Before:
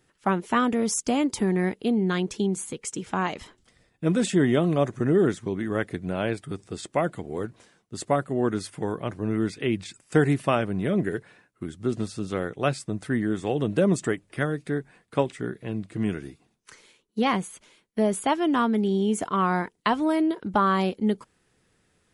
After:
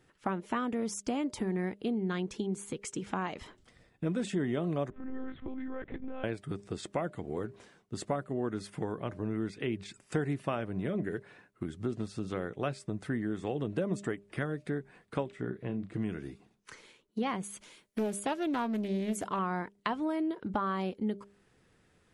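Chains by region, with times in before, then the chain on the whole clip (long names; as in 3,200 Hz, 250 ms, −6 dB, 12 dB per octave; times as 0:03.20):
0:04.90–0:06.24: high-shelf EQ 2,900 Hz −7.5 dB + one-pitch LPC vocoder at 8 kHz 260 Hz + downward compressor 3 to 1, threshold −37 dBFS
0:15.28–0:15.94: high-shelf EQ 3,800 Hz −9 dB + double-tracking delay 32 ms −9.5 dB
0:17.43–0:19.39: high-shelf EQ 4,700 Hz +11.5 dB + highs frequency-modulated by the lows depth 0.32 ms
whole clip: downward compressor 2.5 to 1, threshold −35 dBFS; high-shelf EQ 4,700 Hz −8 dB; hum removal 201.1 Hz, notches 3; level +1 dB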